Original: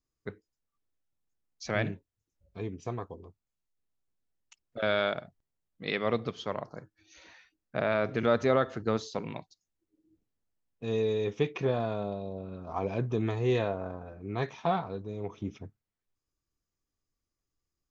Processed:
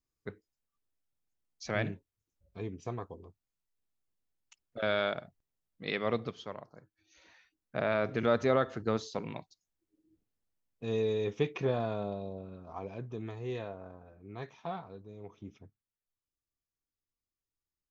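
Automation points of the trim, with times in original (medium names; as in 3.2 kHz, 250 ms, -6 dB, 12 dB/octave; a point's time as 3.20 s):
6.21 s -2.5 dB
6.69 s -11.5 dB
7.85 s -2 dB
12.24 s -2 dB
12.94 s -10.5 dB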